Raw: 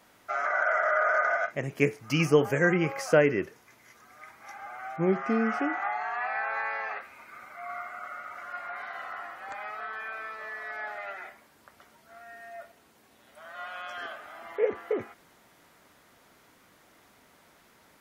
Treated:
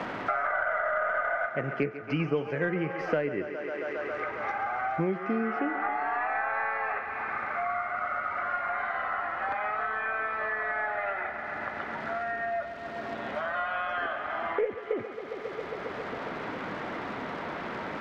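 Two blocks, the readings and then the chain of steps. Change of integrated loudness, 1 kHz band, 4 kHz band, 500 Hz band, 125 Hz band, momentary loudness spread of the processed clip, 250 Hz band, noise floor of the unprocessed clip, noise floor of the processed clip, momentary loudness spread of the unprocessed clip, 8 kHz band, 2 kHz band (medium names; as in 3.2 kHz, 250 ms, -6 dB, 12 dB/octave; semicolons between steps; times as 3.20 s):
-2.0 dB, +3.0 dB, -3.0 dB, -2.0 dB, -3.5 dB, 7 LU, -2.5 dB, -61 dBFS, -38 dBFS, 21 LU, under -15 dB, +0.5 dB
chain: tracing distortion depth 0.027 ms; peaking EQ 7.5 kHz -15 dB 1.1 oct; crackle 350 per s -55 dBFS; distance through air 170 m; on a send: thinning echo 136 ms, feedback 78%, high-pass 220 Hz, level -13.5 dB; on the sum: three bands compressed up and down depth 100%; trim +1 dB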